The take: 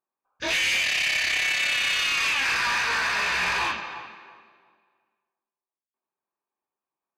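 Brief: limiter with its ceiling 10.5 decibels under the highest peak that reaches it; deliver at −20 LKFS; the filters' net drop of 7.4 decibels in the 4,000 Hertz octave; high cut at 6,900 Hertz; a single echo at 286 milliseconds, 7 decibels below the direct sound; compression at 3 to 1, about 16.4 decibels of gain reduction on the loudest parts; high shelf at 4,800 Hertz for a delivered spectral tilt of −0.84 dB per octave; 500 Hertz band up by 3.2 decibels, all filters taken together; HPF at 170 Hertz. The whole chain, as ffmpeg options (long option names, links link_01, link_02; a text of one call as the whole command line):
ffmpeg -i in.wav -af "highpass=170,lowpass=6900,equalizer=frequency=500:width_type=o:gain=4.5,equalizer=frequency=4000:width_type=o:gain=-8,highshelf=frequency=4800:gain=-6,acompressor=threshold=-48dB:ratio=3,alimiter=level_in=19dB:limit=-24dB:level=0:latency=1,volume=-19dB,aecho=1:1:286:0.447,volume=28dB" out.wav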